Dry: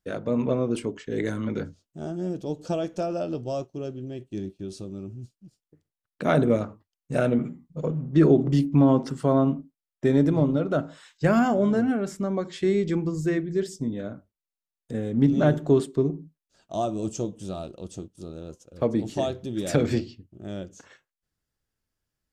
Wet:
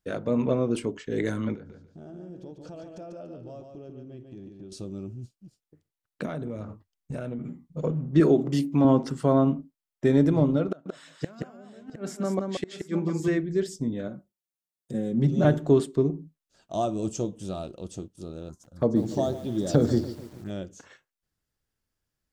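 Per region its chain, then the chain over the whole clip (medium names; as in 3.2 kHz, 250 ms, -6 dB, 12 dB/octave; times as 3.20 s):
1.55–4.72 s: low-pass 2.4 kHz 6 dB/octave + compression 4:1, threshold -42 dBFS + feedback delay 144 ms, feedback 24%, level -5 dB
6.25–7.49 s: bass shelf 170 Hz +8.5 dB + compression 8:1, threshold -30 dBFS
8.20–8.85 s: high-pass 250 Hz 6 dB/octave + treble shelf 7.8 kHz +10 dB
10.68–13.28 s: high-pass 140 Hz + inverted gate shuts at -16 dBFS, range -27 dB + multi-tap echo 176/709 ms -4/-12 dB
14.08–15.45 s: high-pass 92 Hz + peaking EQ 1.6 kHz -7.5 dB 2.9 oct + comb 5.5 ms, depth 74%
18.49–20.50 s: peaking EQ 180 Hz +2.5 dB 1.9 oct + touch-sensitive phaser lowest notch 340 Hz, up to 2.5 kHz, full sweep at -24 dBFS + bit-crushed delay 144 ms, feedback 55%, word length 7-bit, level -14 dB
whole clip: none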